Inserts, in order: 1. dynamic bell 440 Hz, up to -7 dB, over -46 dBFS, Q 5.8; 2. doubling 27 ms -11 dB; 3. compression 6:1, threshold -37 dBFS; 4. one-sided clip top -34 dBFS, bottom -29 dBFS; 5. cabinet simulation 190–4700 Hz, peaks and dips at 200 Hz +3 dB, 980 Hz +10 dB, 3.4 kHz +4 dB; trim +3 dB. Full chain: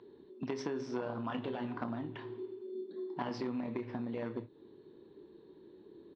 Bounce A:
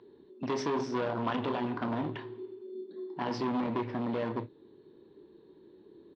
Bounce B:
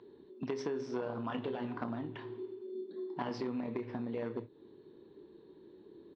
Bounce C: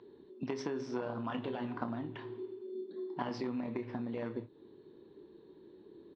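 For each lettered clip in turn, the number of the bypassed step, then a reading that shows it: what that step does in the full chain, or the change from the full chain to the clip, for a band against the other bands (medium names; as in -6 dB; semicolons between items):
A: 3, mean gain reduction 4.5 dB; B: 1, 500 Hz band +1.5 dB; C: 4, distortion -14 dB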